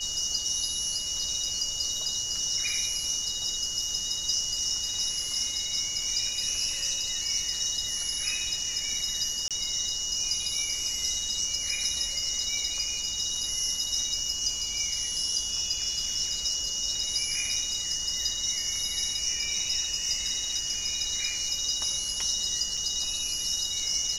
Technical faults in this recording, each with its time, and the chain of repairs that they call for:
tone 2900 Hz -35 dBFS
9.48–9.51 gap 27 ms
22.77 gap 4.9 ms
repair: notch 2900 Hz, Q 30; interpolate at 9.48, 27 ms; interpolate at 22.77, 4.9 ms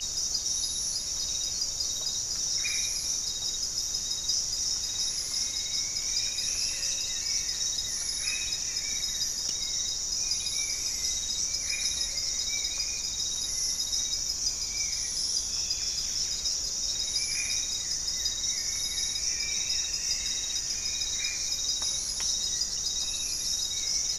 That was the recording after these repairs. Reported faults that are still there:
none

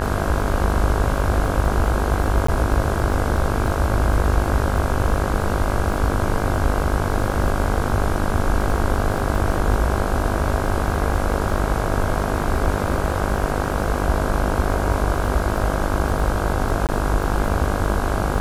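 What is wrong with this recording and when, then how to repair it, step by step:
buzz 50 Hz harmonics 33 -25 dBFS
crackle 37/s -28 dBFS
2.47–2.48 gap 14 ms
16.87–16.89 gap 18 ms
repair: de-click; de-hum 50 Hz, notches 33; interpolate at 2.47, 14 ms; interpolate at 16.87, 18 ms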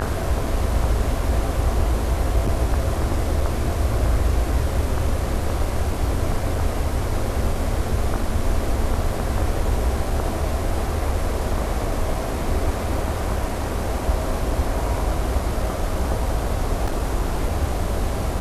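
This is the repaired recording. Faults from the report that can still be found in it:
none

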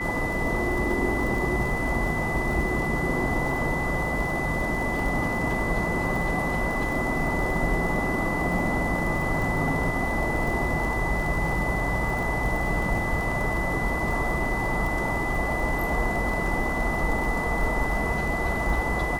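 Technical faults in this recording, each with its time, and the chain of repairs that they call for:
crackle 47/s -31 dBFS
tone 2000 Hz -29 dBFS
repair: de-click; notch 2000 Hz, Q 30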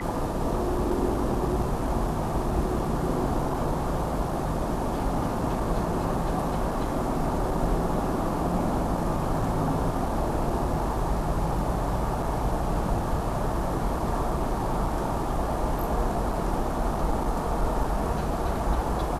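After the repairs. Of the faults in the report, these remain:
none

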